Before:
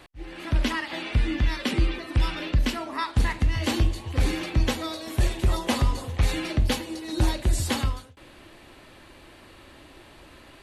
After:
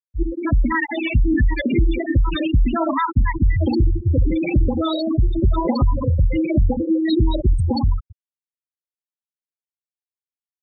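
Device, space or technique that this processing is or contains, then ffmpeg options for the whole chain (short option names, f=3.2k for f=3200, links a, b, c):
loud club master: -af "acompressor=threshold=-24dB:ratio=2,asoftclip=type=hard:threshold=-18dB,alimiter=level_in=26dB:limit=-1dB:release=50:level=0:latency=1,afftfilt=real='re*gte(hypot(re,im),1)':imag='im*gte(hypot(re,im),1)':win_size=1024:overlap=0.75,volume=-8dB"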